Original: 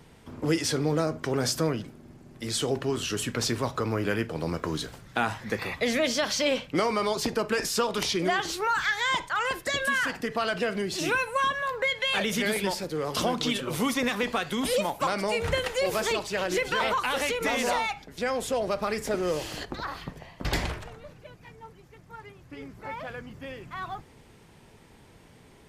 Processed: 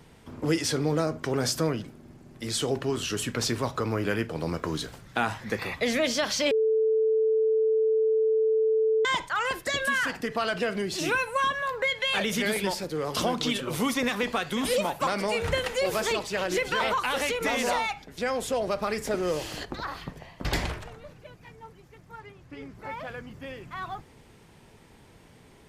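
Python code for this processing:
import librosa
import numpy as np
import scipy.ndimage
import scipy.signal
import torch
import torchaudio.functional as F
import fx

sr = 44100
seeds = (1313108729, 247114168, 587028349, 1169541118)

y = fx.echo_throw(x, sr, start_s=14.05, length_s=0.44, ms=500, feedback_pct=65, wet_db=-11.0)
y = fx.high_shelf(y, sr, hz=11000.0, db=-10.0, at=(22.19, 22.79))
y = fx.edit(y, sr, fx.bleep(start_s=6.51, length_s=2.54, hz=440.0, db=-20.0), tone=tone)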